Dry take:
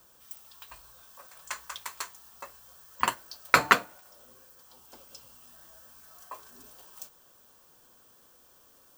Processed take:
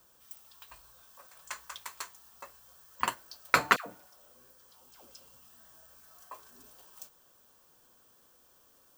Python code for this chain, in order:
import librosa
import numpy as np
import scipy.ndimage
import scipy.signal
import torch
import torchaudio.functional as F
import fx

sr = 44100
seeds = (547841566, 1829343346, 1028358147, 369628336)

y = fx.dispersion(x, sr, late='lows', ms=106.0, hz=900.0, at=(3.76, 5.96))
y = y * librosa.db_to_amplitude(-4.0)